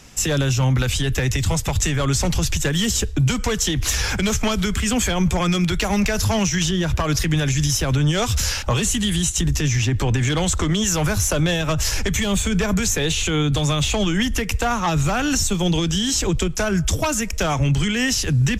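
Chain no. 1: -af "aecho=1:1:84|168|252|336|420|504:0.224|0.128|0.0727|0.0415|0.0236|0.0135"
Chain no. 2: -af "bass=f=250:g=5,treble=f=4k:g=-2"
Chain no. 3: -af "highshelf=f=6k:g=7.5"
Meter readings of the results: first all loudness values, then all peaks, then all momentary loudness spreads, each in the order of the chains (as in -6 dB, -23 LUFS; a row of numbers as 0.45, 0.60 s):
-20.0, -18.0, -18.5 LUFS; -9.0, -6.5, -6.0 dBFS; 2, 4, 3 LU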